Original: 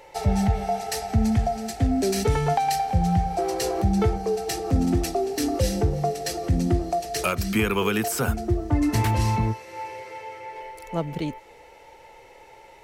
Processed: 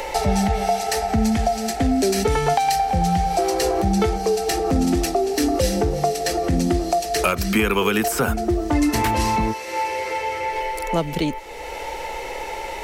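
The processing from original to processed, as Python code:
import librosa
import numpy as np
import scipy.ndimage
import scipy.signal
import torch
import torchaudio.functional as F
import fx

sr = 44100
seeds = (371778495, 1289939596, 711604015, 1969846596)

y = fx.peak_eq(x, sr, hz=110.0, db=-14.5, octaves=0.9)
y = fx.band_squash(y, sr, depth_pct=70)
y = F.gain(torch.from_numpy(y), 5.5).numpy()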